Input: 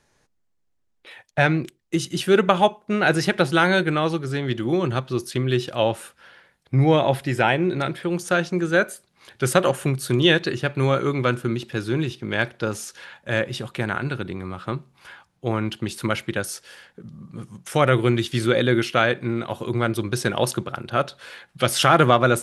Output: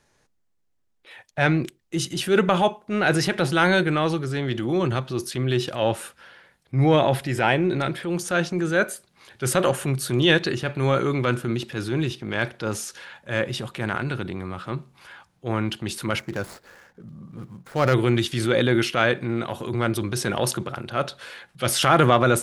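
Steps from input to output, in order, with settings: 16.19–17.94 s: median filter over 15 samples; transient shaper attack -6 dB, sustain +3 dB

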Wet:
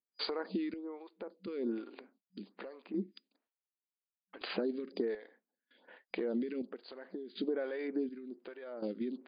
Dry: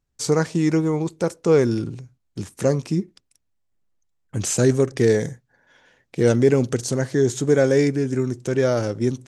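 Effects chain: gate with hold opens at -45 dBFS; FFT band-pass 190–4900 Hz; peak limiter -14.5 dBFS, peak gain reduction 8 dB; compression 10:1, threshold -35 dBFS, peak gain reduction 17 dB; square tremolo 0.68 Hz, depth 65%, duty 50%; lamp-driven phase shifter 1.2 Hz; trim +4.5 dB

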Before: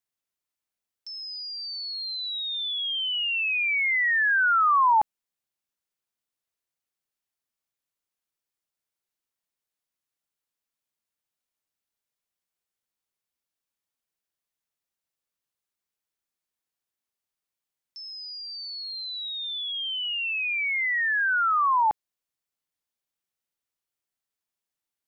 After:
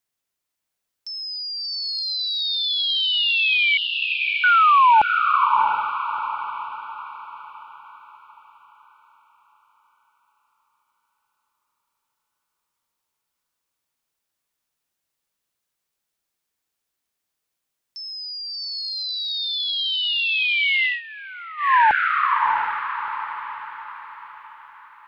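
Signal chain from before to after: 3.77–4.44 s: steep low-pass 760 Hz 48 dB/octave; echo that smears into a reverb 673 ms, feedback 42%, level -4 dB; 20.83–21.75 s: dip -20 dB, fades 0.18 s; trim +6 dB

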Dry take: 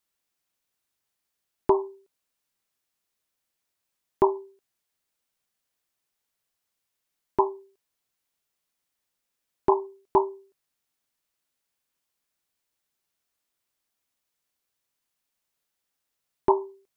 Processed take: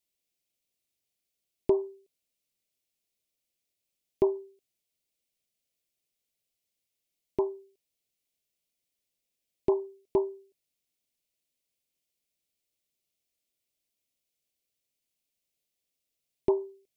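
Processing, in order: high-order bell 1.2 kHz -15 dB 1.3 oct; trim -2.5 dB

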